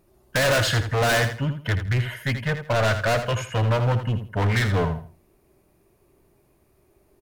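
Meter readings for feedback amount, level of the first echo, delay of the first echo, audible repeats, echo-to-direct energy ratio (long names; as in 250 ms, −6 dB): 23%, −9.5 dB, 81 ms, 2, −9.5 dB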